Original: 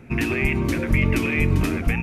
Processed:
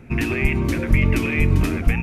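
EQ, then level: low shelf 76 Hz +6.5 dB; 0.0 dB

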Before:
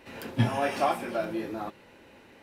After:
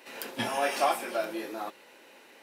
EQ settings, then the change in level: HPF 370 Hz 12 dB/oct; high shelf 4200 Hz +9 dB; 0.0 dB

